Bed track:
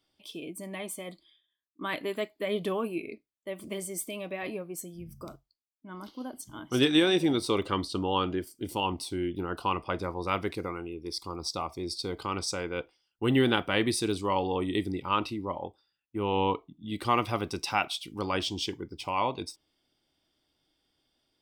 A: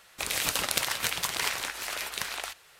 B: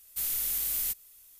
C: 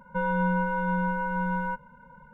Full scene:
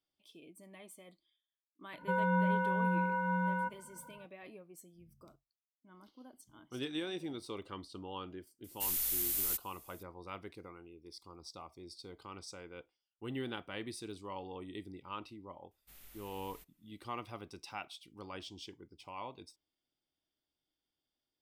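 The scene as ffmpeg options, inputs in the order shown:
ffmpeg -i bed.wav -i cue0.wav -i cue1.wav -i cue2.wav -filter_complex "[2:a]asplit=2[link_01][link_02];[0:a]volume=-16dB[link_03];[3:a]highpass=90[link_04];[link_02]bass=frequency=250:gain=4,treble=frequency=4000:gain=-14[link_05];[link_04]atrim=end=2.33,asetpts=PTS-STARTPTS,volume=-4.5dB,afade=type=in:duration=0.004:curve=hsin,afade=type=out:start_time=2.326:duration=0.004:curve=hsin,adelay=1930[link_06];[link_01]atrim=end=1.39,asetpts=PTS-STARTPTS,volume=-3.5dB,afade=type=in:duration=0.004:curve=hsin,afade=type=out:start_time=1.386:duration=0.004:curve=hsin,adelay=8640[link_07];[link_05]atrim=end=1.39,asetpts=PTS-STARTPTS,volume=-15dB,afade=type=in:duration=0.004:curve=hsin,afade=type=out:start_time=1.386:duration=0.004:curve=hsin,adelay=15710[link_08];[link_03][link_06][link_07][link_08]amix=inputs=4:normalize=0" out.wav

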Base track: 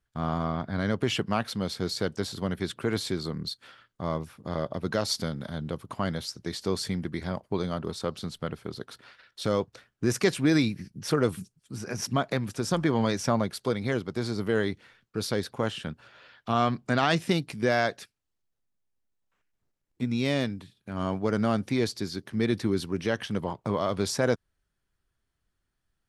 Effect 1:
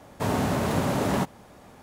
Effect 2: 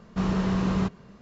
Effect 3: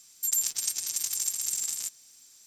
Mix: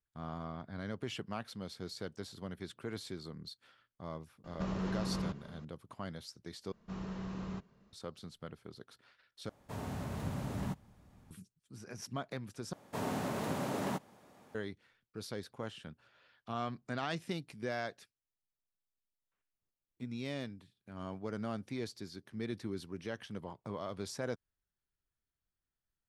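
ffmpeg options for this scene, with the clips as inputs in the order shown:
ffmpeg -i bed.wav -i cue0.wav -i cue1.wav -filter_complex "[2:a]asplit=2[link_01][link_02];[1:a]asplit=2[link_03][link_04];[0:a]volume=-13.5dB[link_05];[link_01]acompressor=threshold=-29dB:ratio=6:attack=3.2:release=140:knee=1:detection=peak[link_06];[link_03]asubboost=boost=9:cutoff=200[link_07];[link_04]highpass=130[link_08];[link_05]asplit=4[link_09][link_10][link_11][link_12];[link_09]atrim=end=6.724[link_13];[link_02]atrim=end=1.21,asetpts=PTS-STARTPTS,volume=-16.5dB[link_14];[link_10]atrim=start=7.926:end=9.494[link_15];[link_07]atrim=end=1.82,asetpts=PTS-STARTPTS,volume=-17dB[link_16];[link_11]atrim=start=11.306:end=12.734[link_17];[link_08]atrim=end=1.82,asetpts=PTS-STARTPTS,volume=-10.5dB[link_18];[link_12]atrim=start=14.546[link_19];[link_06]atrim=end=1.21,asetpts=PTS-STARTPTS,volume=-4dB,afade=type=in:duration=0.004:curve=hsin,afade=type=out:start_time=1.206:duration=0.004:curve=hsin,adelay=4440[link_20];[link_13][link_14]acrossfade=duration=0.004:curve1=hsin:curve2=hsin[link_21];[link_21][link_15]acrossfade=duration=0.004:curve1=hsin:curve2=hsin[link_22];[link_22][link_16]acrossfade=duration=0.004:curve1=hsin:curve2=hsin[link_23];[link_23][link_17]acrossfade=duration=0.004:curve1=hsin:curve2=hsin[link_24];[link_24][link_18]acrossfade=duration=0.004:curve1=hsin:curve2=hsin[link_25];[link_25][link_19]acrossfade=duration=0.004:curve1=hsin:curve2=hsin[link_26];[link_26][link_20]amix=inputs=2:normalize=0" out.wav

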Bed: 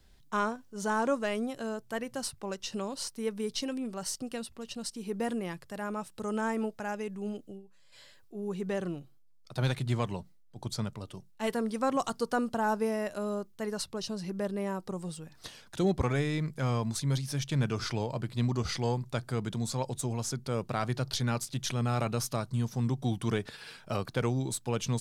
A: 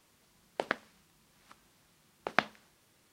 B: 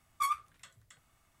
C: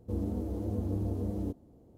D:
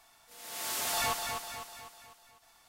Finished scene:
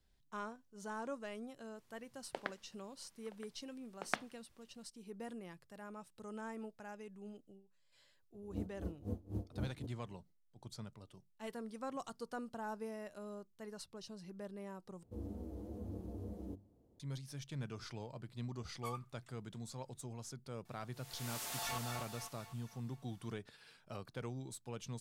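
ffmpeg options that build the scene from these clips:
ffmpeg -i bed.wav -i cue0.wav -i cue1.wav -i cue2.wav -i cue3.wav -filter_complex "[3:a]asplit=2[link_01][link_02];[0:a]volume=-14.5dB[link_03];[1:a]aecho=1:1:971:0.141[link_04];[link_01]aeval=exprs='val(0)*pow(10,-26*(0.5-0.5*cos(2*PI*3.9*n/s))/20)':channel_layout=same[link_05];[link_02]bandreject=frequency=50:width_type=h:width=6,bandreject=frequency=100:width_type=h:width=6,bandreject=frequency=150:width_type=h:width=6,bandreject=frequency=200:width_type=h:width=6,bandreject=frequency=250:width_type=h:width=6,bandreject=frequency=300:width_type=h:width=6,bandreject=frequency=350:width_type=h:width=6[link_06];[4:a]asoftclip=type=tanh:threshold=-23.5dB[link_07];[link_03]asplit=2[link_08][link_09];[link_08]atrim=end=15.034[link_10];[link_06]atrim=end=1.97,asetpts=PTS-STARTPTS,volume=-11dB[link_11];[link_09]atrim=start=16.996[link_12];[link_04]atrim=end=3.12,asetpts=PTS-STARTPTS,volume=-9.5dB,afade=type=in:duration=0.004:curve=hsin,afade=type=out:start_time=3.116:duration=0.004:curve=hsin,adelay=1750[link_13];[link_05]atrim=end=1.97,asetpts=PTS-STARTPTS,volume=-5dB,afade=type=in:duration=0.004:curve=hsin,afade=type=out:start_time=1.966:duration=0.004:curve=hsin,adelay=367794S[link_14];[2:a]atrim=end=1.4,asetpts=PTS-STARTPTS,volume=-15dB,afade=type=in:duration=0.004:curve=hsin,afade=type=out:start_time=1.396:duration=0.004:curve=hsin,adelay=18630[link_15];[link_07]atrim=end=2.68,asetpts=PTS-STARTPTS,volume=-9.5dB,afade=type=in:duration=0.004:curve=hsin,afade=type=out:start_time=2.676:duration=0.004:curve=hsin,adelay=20650[link_16];[link_10][link_11]acrossfade=duration=0.004:curve1=hsin:curve2=hsin[link_17];[link_17][link_12]acrossfade=duration=0.004:curve1=hsin:curve2=hsin[link_18];[link_18][link_13][link_14][link_15][link_16]amix=inputs=5:normalize=0" out.wav

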